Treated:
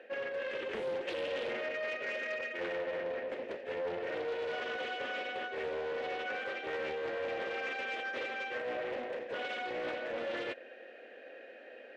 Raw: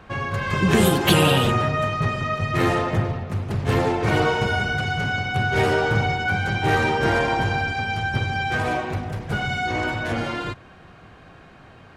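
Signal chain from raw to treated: vowel filter e; reverse; compressor 6:1, threshold -42 dBFS, peak gain reduction 17 dB; reverse; soft clip -38.5 dBFS, distortion -19 dB; FFT band-pass 210–9700 Hz; Doppler distortion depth 0.34 ms; gain +9 dB

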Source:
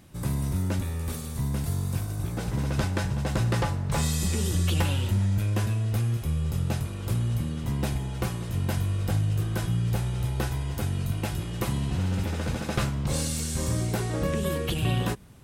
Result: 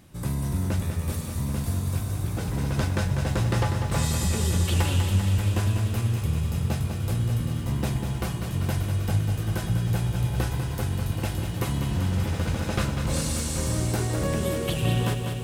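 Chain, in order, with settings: lo-fi delay 0.196 s, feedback 80%, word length 9-bit, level -7.5 dB

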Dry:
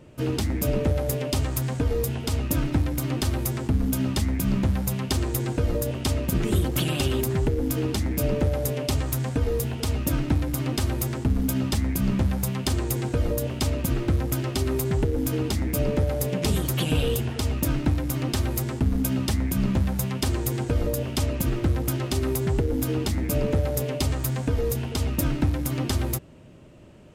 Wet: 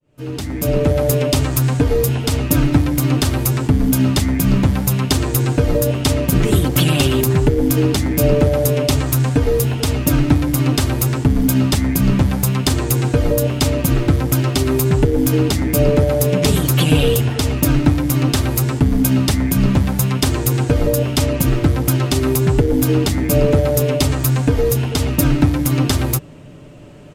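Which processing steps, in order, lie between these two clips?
opening faded in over 1.03 s; comb 6.9 ms, depth 42%; gain +9 dB

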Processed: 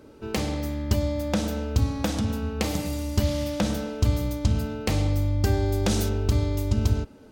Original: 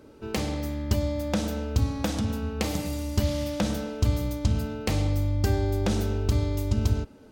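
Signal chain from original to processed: 5.53–6.08 bell 10000 Hz 0 dB -> +10 dB 2.5 oct; gain +1.5 dB

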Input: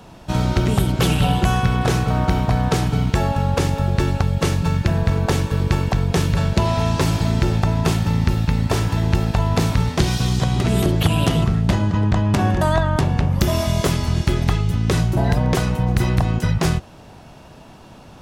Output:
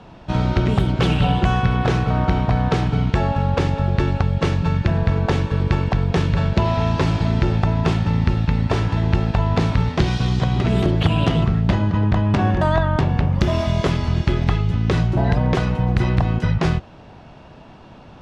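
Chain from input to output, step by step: LPF 3700 Hz 12 dB/oct

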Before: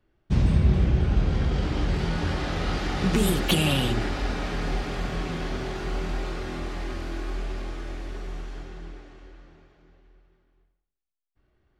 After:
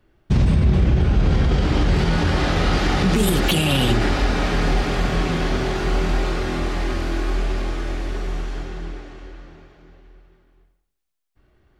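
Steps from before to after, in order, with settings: maximiser +17 dB; gain -8 dB

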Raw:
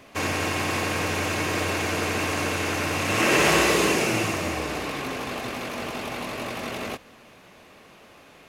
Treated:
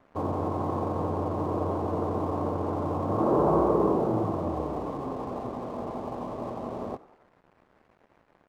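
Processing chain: steep low-pass 1100 Hz 48 dB/oct; crossover distortion -51 dBFS; frequency-shifting echo 93 ms, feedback 54%, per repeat +71 Hz, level -20.5 dB

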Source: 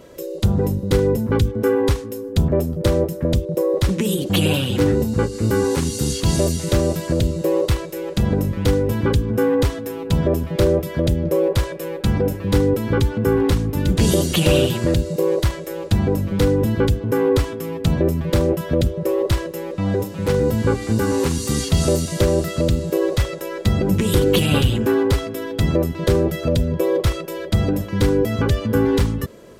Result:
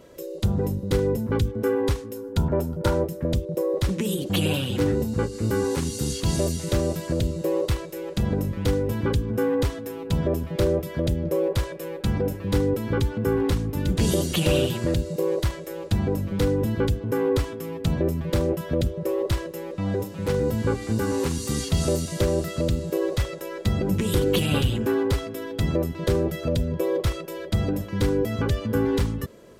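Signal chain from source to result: 2.15–3.02 small resonant body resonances 930/1400 Hz, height 14 dB -> 17 dB; gain -5.5 dB

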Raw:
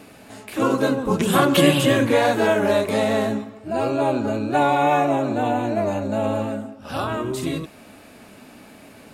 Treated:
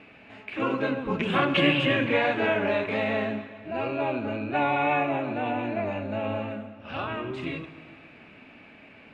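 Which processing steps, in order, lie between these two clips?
synth low-pass 2500 Hz, resonance Q 3.4; reverb RT60 2.4 s, pre-delay 33 ms, DRR 12 dB; gain -8 dB

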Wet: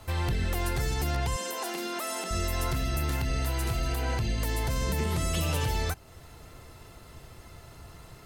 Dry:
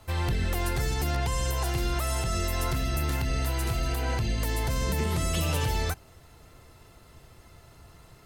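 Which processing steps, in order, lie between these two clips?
in parallel at +2 dB: compressor, threshold -40 dBFS, peak gain reduction 15 dB; 1.36–2.31 on the sum: brick-wall FIR high-pass 180 Hz; gain -3 dB

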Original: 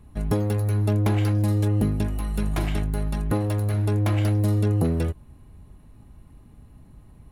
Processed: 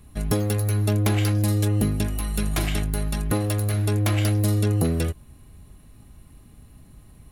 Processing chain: high shelf 2400 Hz +11 dB; notch 910 Hz, Q 7.8

